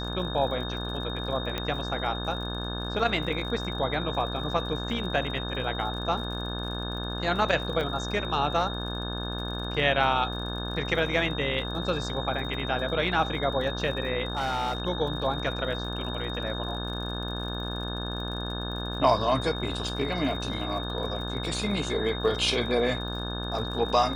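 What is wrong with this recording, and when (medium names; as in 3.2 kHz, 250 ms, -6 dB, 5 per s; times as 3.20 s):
buzz 60 Hz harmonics 29 -34 dBFS
crackle 50 per s -38 dBFS
whine 3.7 kHz -36 dBFS
1.58 s: pop -15 dBFS
7.81 s: dropout 2.9 ms
14.33–14.82 s: clipped -24.5 dBFS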